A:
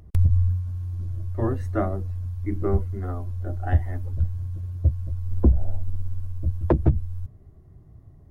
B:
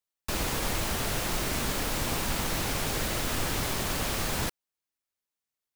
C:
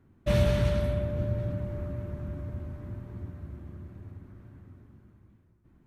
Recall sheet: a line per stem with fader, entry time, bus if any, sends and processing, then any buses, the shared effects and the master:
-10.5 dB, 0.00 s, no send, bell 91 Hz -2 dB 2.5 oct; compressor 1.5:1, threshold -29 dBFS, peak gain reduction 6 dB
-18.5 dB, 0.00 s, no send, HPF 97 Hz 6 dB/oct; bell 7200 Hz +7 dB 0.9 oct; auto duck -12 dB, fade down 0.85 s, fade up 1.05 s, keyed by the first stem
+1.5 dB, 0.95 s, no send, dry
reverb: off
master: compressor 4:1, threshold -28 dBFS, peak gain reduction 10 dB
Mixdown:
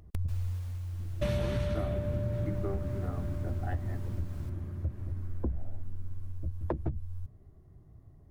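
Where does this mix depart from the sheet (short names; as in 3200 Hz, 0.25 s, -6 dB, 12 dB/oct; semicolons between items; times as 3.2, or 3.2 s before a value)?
stem A -10.5 dB -> -4.5 dB; stem B: missing bell 7200 Hz +7 dB 0.9 oct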